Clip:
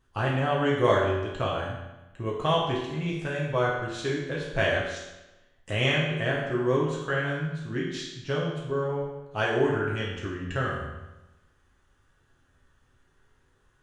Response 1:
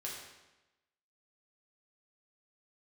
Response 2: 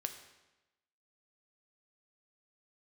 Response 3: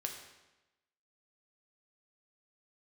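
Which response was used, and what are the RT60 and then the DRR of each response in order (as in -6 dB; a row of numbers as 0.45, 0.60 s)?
1; 1.0, 1.0, 1.0 s; -4.5, 6.0, 2.0 dB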